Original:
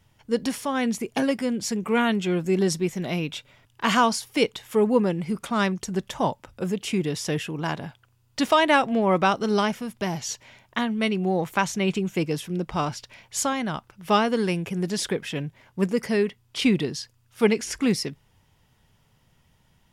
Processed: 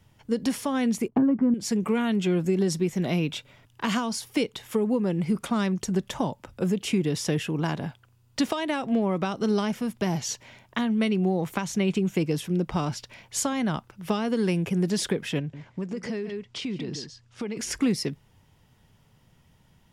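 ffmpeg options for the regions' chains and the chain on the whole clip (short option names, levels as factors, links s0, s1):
-filter_complex "[0:a]asettb=1/sr,asplit=3[s0][s1][s2];[s0]atrim=end=1.084[s3];[s1]atrim=start=1.08:end=1.54,asetpts=PTS-STARTPTS,afade=t=in:d=0.004:c=qsin,afade=t=out:st=0.456:d=0.004:c=qsin,agate=range=0.0224:threshold=0.00355:ratio=3:release=100:detection=peak,lowpass=f=1100:t=q:w=2.4,lowshelf=f=430:t=q:w=1.5:g=8.5[s4];[s2]atrim=start=1.536[s5];[s3][s4]acrossfade=d=0.004:c1=hsin:c2=qsin[s6];[s6][s5]acrossfade=d=0.004:c1=qsin:c2=hsin,asettb=1/sr,asplit=3[s7][s8][s9];[s7]atrim=end=15.394[s10];[s8]atrim=start=15.39:end=17.57,asetpts=PTS-STARTPTS,afade=t=in:d=0.004:c=qsin,afade=t=out:st=2.176:d=0.004:c=qsin,lowpass=f=7600:w=0.5412,lowpass=f=7600:w=1.3066,aecho=1:1:141:0.211,atrim=end_sample=96138,acompressor=threshold=0.0282:ratio=12:attack=3.2:release=140:knee=1:detection=peak[s11];[s9]atrim=start=17.566[s12];[s10][s11]acrossfade=d=0.004:c1=hsin:c2=qsin[s13];[s13][s12]acrossfade=d=0.004:c1=qsin:c2=hsin,acompressor=threshold=0.0708:ratio=6,equalizer=f=200:t=o:w=3:g=4,acrossover=split=360|3000[s14][s15][s16];[s15]acompressor=threshold=0.0447:ratio=6[s17];[s14][s17][s16]amix=inputs=3:normalize=0"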